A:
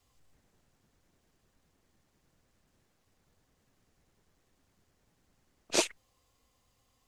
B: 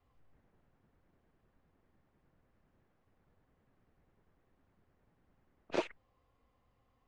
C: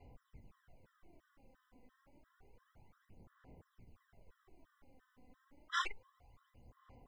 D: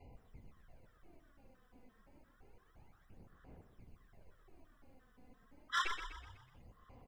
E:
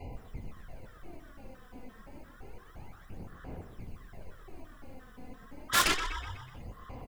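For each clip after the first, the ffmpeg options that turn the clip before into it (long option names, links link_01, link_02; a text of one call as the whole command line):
ffmpeg -i in.wav -af "alimiter=limit=-15.5dB:level=0:latency=1:release=60,lowpass=1800" out.wav
ffmpeg -i in.wav -af "aphaser=in_gain=1:out_gain=1:delay=4:decay=0.64:speed=0.29:type=sinusoidal,afftfilt=real='re*gt(sin(2*PI*2.9*pts/sr)*(1-2*mod(floor(b*sr/1024/1000),2)),0)':imag='im*gt(sin(2*PI*2.9*pts/sr)*(1-2*mod(floor(b*sr/1024/1000),2)),0)':win_size=1024:overlap=0.75,volume=7dB" out.wav
ffmpeg -i in.wav -filter_complex "[0:a]volume=28.5dB,asoftclip=hard,volume=-28.5dB,asplit=7[link_01][link_02][link_03][link_04][link_05][link_06][link_07];[link_02]adelay=124,afreqshift=-32,volume=-8dB[link_08];[link_03]adelay=248,afreqshift=-64,volume=-14.4dB[link_09];[link_04]adelay=372,afreqshift=-96,volume=-20.8dB[link_10];[link_05]adelay=496,afreqshift=-128,volume=-27.1dB[link_11];[link_06]adelay=620,afreqshift=-160,volume=-33.5dB[link_12];[link_07]adelay=744,afreqshift=-192,volume=-39.9dB[link_13];[link_01][link_08][link_09][link_10][link_11][link_12][link_13]amix=inputs=7:normalize=0,volume=1.5dB" out.wav
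ffmpeg -i in.wav -filter_complex "[0:a]aeval=exprs='0.0501*(cos(1*acos(clip(val(0)/0.0501,-1,1)))-cos(1*PI/2))+0.0224*(cos(7*acos(clip(val(0)/0.0501,-1,1)))-cos(7*PI/2))':channel_layout=same,asplit=2[link_01][link_02];[link_02]adelay=23,volume=-13.5dB[link_03];[link_01][link_03]amix=inputs=2:normalize=0,volume=8.5dB" out.wav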